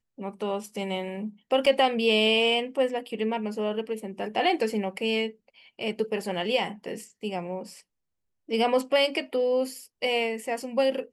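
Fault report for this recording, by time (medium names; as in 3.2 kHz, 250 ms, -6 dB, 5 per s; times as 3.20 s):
1.66–1.67 s: dropout 5.3 ms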